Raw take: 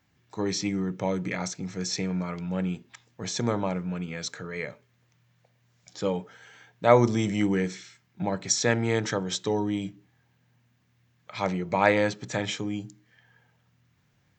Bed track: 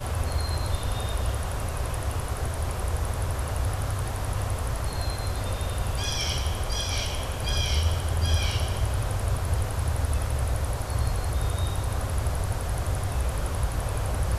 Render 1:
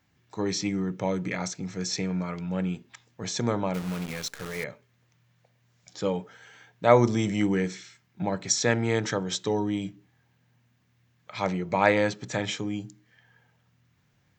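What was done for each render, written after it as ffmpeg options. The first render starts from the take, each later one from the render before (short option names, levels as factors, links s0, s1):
-filter_complex "[0:a]asettb=1/sr,asplit=3[s0][s1][s2];[s0]atrim=end=3.744[s3];[s1]atrim=start=3.74:end=4.64,asetpts=PTS-STARTPTS,afade=t=in:d=0.004:c=qsin,afade=t=out:st=0.896:d=0.004:c=qsin,acrusher=bits=7:dc=4:mix=0:aa=0.000001[s4];[s2]atrim=start=4.636[s5];[s3][s4]acrossfade=d=0.004:c1=hsin:c2=qsin[s6];[s6][s5]acrossfade=d=0.004:c1=qsin:c2=hsin"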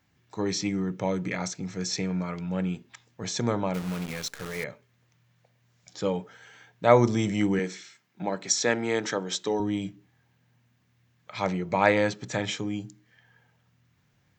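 -filter_complex "[0:a]asettb=1/sr,asplit=3[s0][s1][s2];[s0]atrim=end=7.594[s3];[s1]atrim=start=7.59:end=9.6,asetpts=PTS-STARTPTS,afade=t=in:d=0.004:c=qsin,afade=t=out:st=2.006:d=0.004:c=qsin,highpass=220[s4];[s2]atrim=start=9.596[s5];[s3][s4]acrossfade=d=0.004:c1=hsin:c2=qsin[s6];[s6][s5]acrossfade=d=0.004:c1=qsin:c2=hsin"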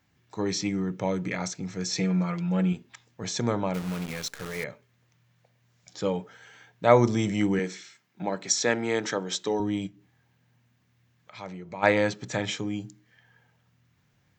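-filter_complex "[0:a]asettb=1/sr,asplit=3[s0][s1][s2];[s0]atrim=end=1.954[s3];[s1]atrim=start=1.95:end=2.73,asetpts=PTS-STARTPTS,afade=t=in:d=0.004:c=qsin,afade=t=out:st=0.776:d=0.004:c=qsin,aecho=1:1:5.9:0.78,atrim=end_sample=34398[s4];[s2]atrim=start=2.726[s5];[s3][s4]acrossfade=d=0.004:c1=hsin:c2=qsin[s6];[s6][s5]acrossfade=d=0.004:c1=qsin:c2=hsin,asplit=3[s7][s8][s9];[s7]afade=t=out:st=9.86:d=0.02[s10];[s8]acompressor=threshold=0.00178:ratio=1.5:attack=3.2:release=140:knee=1:detection=peak,afade=t=in:st=9.86:d=0.02,afade=t=out:st=11.82:d=0.02[s11];[s9]afade=t=in:st=11.82:d=0.02[s12];[s10][s11][s12]amix=inputs=3:normalize=0"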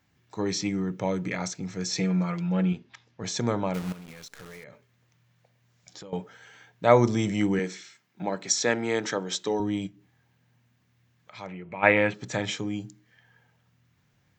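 -filter_complex "[0:a]asettb=1/sr,asplit=3[s0][s1][s2];[s0]atrim=end=2.484[s3];[s1]atrim=start=2.48:end=3.24,asetpts=PTS-STARTPTS,afade=t=in:d=0.004:c=qsin,afade=t=out:st=0.756:d=0.004:c=qsin,lowpass=f=5800:w=0.5412,lowpass=f=5800:w=1.3066[s4];[s2]atrim=start=3.236[s5];[s3][s4]acrossfade=d=0.004:c1=hsin:c2=qsin[s6];[s6][s5]acrossfade=d=0.004:c1=qsin:c2=hsin,asettb=1/sr,asplit=3[s7][s8][s9];[s7]atrim=end=3.924[s10];[s8]atrim=start=3.92:end=6.13,asetpts=PTS-STARTPTS,afade=t=in:d=0.004:c=qsin,afade=t=out:st=2.206:d=0.004:c=qsin,acompressor=threshold=0.01:ratio=12:attack=3.2:release=140:knee=1:detection=peak[s11];[s9]atrim=start=6.126[s12];[s10][s11]acrossfade=d=0.004:c1=hsin:c2=qsin[s13];[s13][s12]acrossfade=d=0.004:c1=qsin:c2=hsin,asettb=1/sr,asplit=3[s14][s15][s16];[s14]atrim=end=11.474[s17];[s15]atrim=start=11.47:end=12.14,asetpts=PTS-STARTPTS,afade=t=in:d=0.004:c=qsin,afade=t=out:st=0.666:d=0.004:c=qsin,highshelf=f=3600:t=q:w=3:g=-11[s18];[s16]atrim=start=12.136[s19];[s17][s18]acrossfade=d=0.004:c1=hsin:c2=qsin[s20];[s20][s19]acrossfade=d=0.004:c1=qsin:c2=hsin"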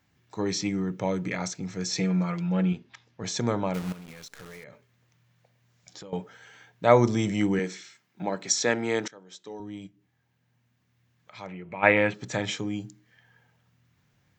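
-filter_complex "[0:a]asplit=2[s0][s1];[s0]atrim=end=9.08,asetpts=PTS-STARTPTS,afade=t=out:st=9.076:d=0.004:c=hsin:silence=0.0668344[s2];[s1]atrim=start=9.08,asetpts=PTS-STARTPTS,afade=t=in:d=2.6:silence=0.0668344[s3];[s2][s3]concat=n=2:v=0:a=1"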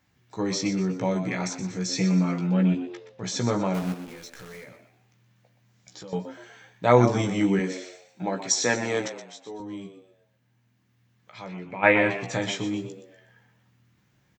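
-filter_complex "[0:a]asplit=2[s0][s1];[s1]adelay=16,volume=0.531[s2];[s0][s2]amix=inputs=2:normalize=0,asplit=5[s3][s4][s5][s6][s7];[s4]adelay=122,afreqshift=86,volume=0.282[s8];[s5]adelay=244,afreqshift=172,volume=0.105[s9];[s6]adelay=366,afreqshift=258,volume=0.0385[s10];[s7]adelay=488,afreqshift=344,volume=0.0143[s11];[s3][s8][s9][s10][s11]amix=inputs=5:normalize=0"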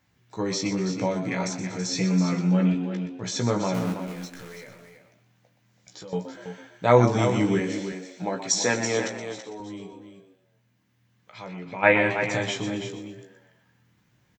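-filter_complex "[0:a]asplit=2[s0][s1];[s1]adelay=18,volume=0.251[s2];[s0][s2]amix=inputs=2:normalize=0,asplit=2[s3][s4];[s4]aecho=0:1:329:0.355[s5];[s3][s5]amix=inputs=2:normalize=0"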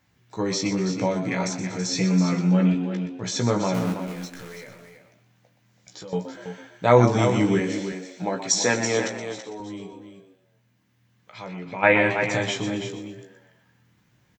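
-af "volume=1.26,alimiter=limit=0.708:level=0:latency=1"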